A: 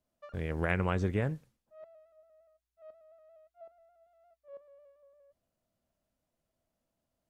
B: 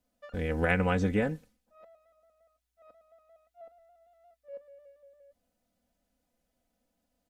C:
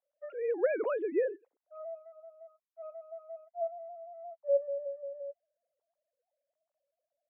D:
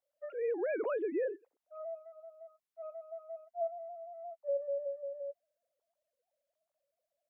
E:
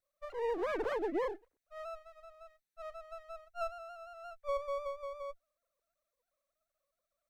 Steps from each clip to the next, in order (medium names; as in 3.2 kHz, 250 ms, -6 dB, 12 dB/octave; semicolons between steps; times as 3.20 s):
band-stop 1.1 kHz, Q 5.3; comb 4 ms, depth 75%; trim +3 dB
formants replaced by sine waves; band-pass filter 550 Hz, Q 1.1
peak limiter -27.5 dBFS, peak gain reduction 10 dB
comb filter that takes the minimum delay 0.51 ms; trim +1 dB